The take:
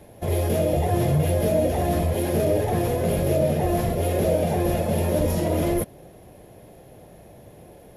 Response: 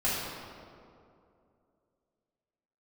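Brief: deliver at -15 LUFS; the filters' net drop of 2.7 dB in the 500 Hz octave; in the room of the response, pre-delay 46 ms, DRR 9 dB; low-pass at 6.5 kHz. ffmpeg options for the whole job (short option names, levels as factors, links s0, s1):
-filter_complex "[0:a]lowpass=6500,equalizer=f=500:t=o:g=-3.5,asplit=2[s0][s1];[1:a]atrim=start_sample=2205,adelay=46[s2];[s1][s2]afir=irnorm=-1:irlink=0,volume=0.106[s3];[s0][s3]amix=inputs=2:normalize=0,volume=2.51"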